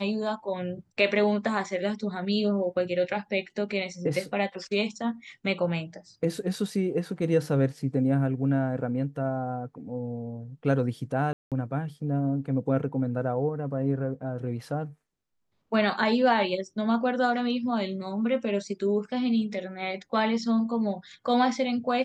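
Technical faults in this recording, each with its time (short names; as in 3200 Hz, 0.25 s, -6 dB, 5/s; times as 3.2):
11.33–11.52 gap 0.187 s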